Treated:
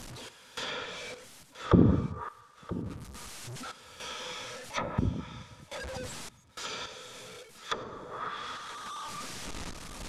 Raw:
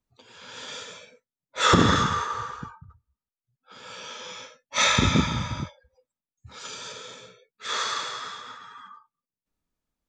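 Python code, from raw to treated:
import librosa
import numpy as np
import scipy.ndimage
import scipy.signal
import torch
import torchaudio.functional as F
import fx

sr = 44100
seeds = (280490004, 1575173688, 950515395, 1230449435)

y = fx.delta_mod(x, sr, bps=64000, step_db=-35.0)
y = fx.tremolo_random(y, sr, seeds[0], hz=3.5, depth_pct=95)
y = fx.rider(y, sr, range_db=5, speed_s=2.0)
y = fx.env_lowpass_down(y, sr, base_hz=400.0, full_db=-23.5)
y = y + 10.0 ** (-15.5 / 20.0) * np.pad(y, (int(977 * sr / 1000.0), 0))[:len(y)]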